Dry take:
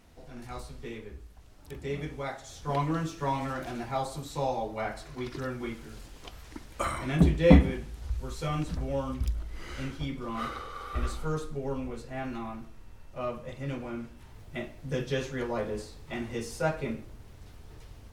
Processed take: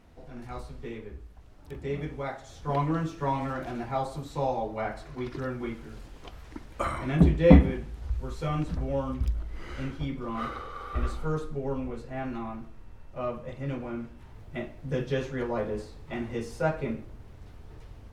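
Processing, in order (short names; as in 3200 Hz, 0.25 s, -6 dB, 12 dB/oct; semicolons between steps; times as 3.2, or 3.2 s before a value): high shelf 3300 Hz -10.5 dB; gain +2 dB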